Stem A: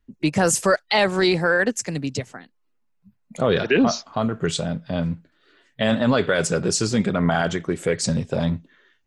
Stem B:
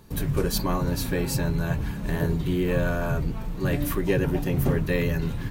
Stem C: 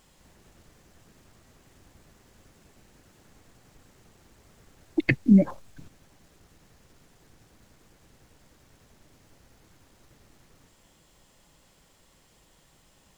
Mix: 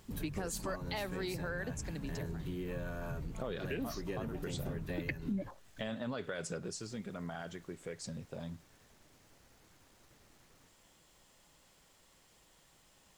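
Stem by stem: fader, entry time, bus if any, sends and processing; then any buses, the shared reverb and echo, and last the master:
0:06.59 −0.5 dB → 0:06.81 −8.5 dB, 0.00 s, no send, automatic ducking −12 dB, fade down 0.35 s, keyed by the third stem
−10.0 dB, 0.00 s, no send, no processing
−3.0 dB, 0.00 s, no send, low-shelf EQ 410 Hz −5.5 dB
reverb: not used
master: downward compressor 3 to 1, threshold −38 dBFS, peak gain reduction 14 dB

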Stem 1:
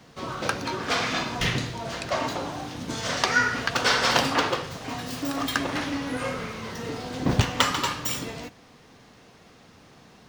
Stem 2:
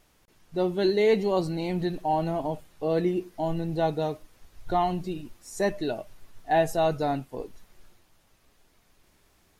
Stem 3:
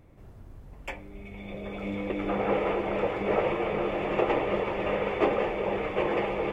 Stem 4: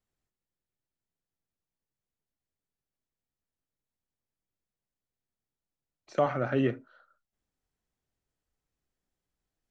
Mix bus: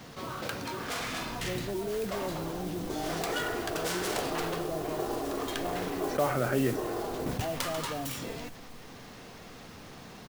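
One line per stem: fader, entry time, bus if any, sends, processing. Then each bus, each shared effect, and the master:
−18.5 dB, 0.00 s, no send, phase distortion by the signal itself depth 0.38 ms
−19.5 dB, 0.90 s, no send, Butterworth low-pass 740 Hz
−17.0 dB, 0.80 s, no send, elliptic low-pass filter 1,600 Hz; comb filter 2.8 ms
−3.0 dB, 0.00 s, no send, no processing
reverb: not used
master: noise that follows the level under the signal 16 dB; envelope flattener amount 50%

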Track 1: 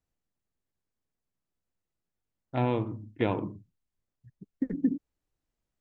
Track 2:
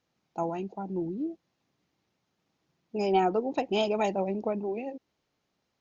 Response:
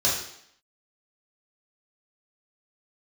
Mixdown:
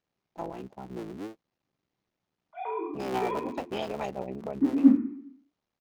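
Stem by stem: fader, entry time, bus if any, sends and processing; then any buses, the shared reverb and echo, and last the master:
−7.5 dB, 0.00 s, send −3.5 dB, three sine waves on the formant tracks; comb filter 0.9 ms
−4.5 dB, 0.00 s, no send, sub-harmonics by changed cycles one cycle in 3, muted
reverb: on, RT60 0.70 s, pre-delay 3 ms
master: high-shelf EQ 6,100 Hz −6.5 dB

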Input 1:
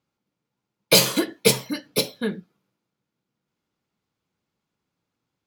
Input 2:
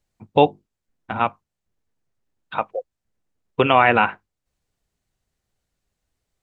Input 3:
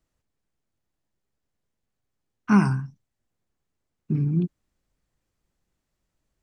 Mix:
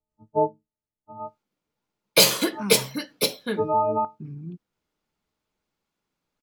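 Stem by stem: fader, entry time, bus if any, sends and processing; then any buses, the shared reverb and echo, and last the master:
0.0 dB, 1.25 s, no send, high-pass filter 260 Hz 6 dB per octave
−8.5 dB, 0.00 s, no send, every partial snapped to a pitch grid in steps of 6 semitones; elliptic low-pass filter 1,100 Hz, stop band 40 dB; square-wave tremolo 0.63 Hz, depth 60%, duty 55%
−14.0 dB, 0.10 s, no send, no processing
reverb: not used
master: no processing

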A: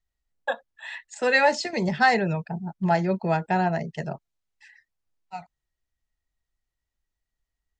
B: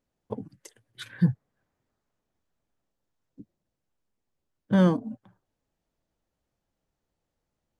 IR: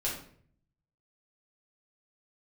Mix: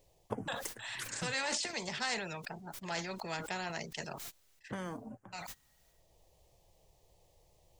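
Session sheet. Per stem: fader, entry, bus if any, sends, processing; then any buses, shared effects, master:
−16.0 dB, 0.00 s, no send, noise gate −50 dBFS, range −27 dB; spectral tilt +2 dB per octave; level that may fall only so fast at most 72 dB per second
−0.5 dB, 0.00 s, no send, downward compressor, threshold −25 dBFS, peak gain reduction 9.5 dB; phaser swept by the level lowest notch 230 Hz, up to 3,900 Hz, full sweep at −46 dBFS; automatic ducking −11 dB, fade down 1.40 s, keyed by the first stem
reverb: not used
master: every bin compressed towards the loudest bin 2 to 1

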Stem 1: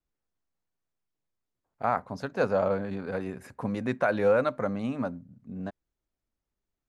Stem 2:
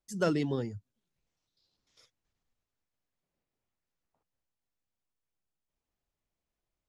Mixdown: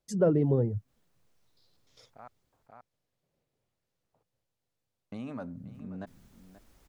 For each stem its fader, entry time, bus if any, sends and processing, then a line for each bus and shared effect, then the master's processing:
−15.5 dB, 0.35 s, muted 0:02.28–0:05.12, no send, echo send −15.5 dB, envelope flattener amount 70%; automatic ducking −15 dB, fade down 0.65 s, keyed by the second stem
+2.0 dB, 0.00 s, no send, no echo send, downward compressor 1.5 to 1, threshold −33 dBFS, peak gain reduction 4 dB; octave-band graphic EQ 125/500/4,000 Hz +10/+8/+3 dB; treble cut that deepens with the level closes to 960 Hz, closed at −28 dBFS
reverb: not used
echo: single-tap delay 532 ms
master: no processing

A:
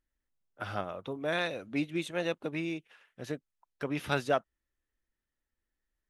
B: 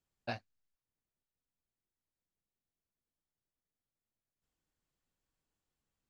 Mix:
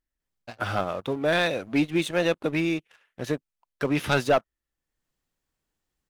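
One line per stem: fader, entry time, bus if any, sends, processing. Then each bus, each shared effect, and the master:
+2.0 dB, 0.00 s, no send, no processing
+1.0 dB, 0.20 s, no send, automatic gain control gain up to 8 dB; automatic ducking −17 dB, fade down 0.20 s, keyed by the first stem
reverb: not used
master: leveller curve on the samples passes 2

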